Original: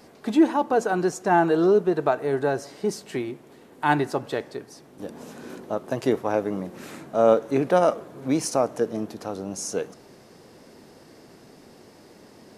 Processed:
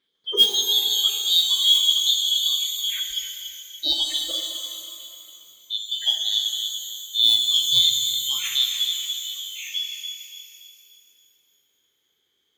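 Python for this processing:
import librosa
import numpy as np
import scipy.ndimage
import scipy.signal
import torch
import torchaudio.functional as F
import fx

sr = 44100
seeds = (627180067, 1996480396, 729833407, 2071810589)

y = fx.band_shuffle(x, sr, order='3412')
y = fx.bass_treble(y, sr, bass_db=-5, treble_db=-15)
y = fx.mod_noise(y, sr, seeds[0], snr_db=17)
y = fx.noise_reduce_blind(y, sr, reduce_db=25)
y = scipy.signal.sosfilt(scipy.signal.butter(2, 51.0, 'highpass', fs=sr, output='sos'), y)
y = fx.low_shelf_res(y, sr, hz=560.0, db=6.5, q=3.0)
y = fx.echo_banded(y, sr, ms=287, feedback_pct=41, hz=3000.0, wet_db=-10.0)
y = fx.rev_shimmer(y, sr, seeds[1], rt60_s=2.3, semitones=12, shimmer_db=-8, drr_db=2.5)
y = y * librosa.db_to_amplitude(5.0)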